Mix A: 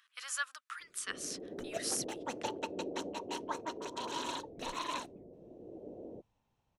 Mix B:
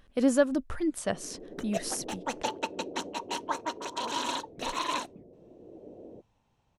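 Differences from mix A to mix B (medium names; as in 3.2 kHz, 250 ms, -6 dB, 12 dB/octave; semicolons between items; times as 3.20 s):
speech: remove Chebyshev high-pass 1.2 kHz, order 4; second sound +7.0 dB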